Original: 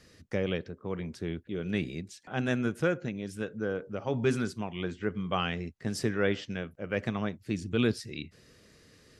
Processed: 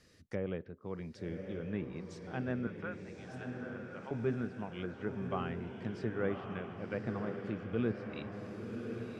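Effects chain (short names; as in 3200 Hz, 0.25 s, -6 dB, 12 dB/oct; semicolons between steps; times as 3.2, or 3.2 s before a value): treble ducked by the level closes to 1500 Hz, closed at -28.5 dBFS; 2.67–4.11 HPF 900 Hz 12 dB/oct; on a send: diffused feedback echo 1.106 s, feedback 54%, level -5.5 dB; on the sum: gain -6.5 dB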